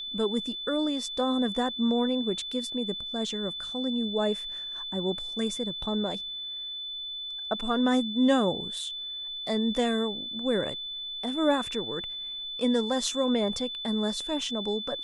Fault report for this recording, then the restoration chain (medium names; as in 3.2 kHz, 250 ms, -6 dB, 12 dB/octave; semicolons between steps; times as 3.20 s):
whine 3.5 kHz -34 dBFS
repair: band-stop 3.5 kHz, Q 30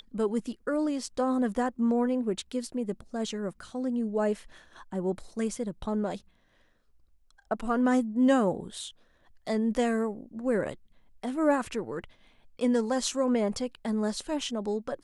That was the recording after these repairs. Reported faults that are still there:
nothing left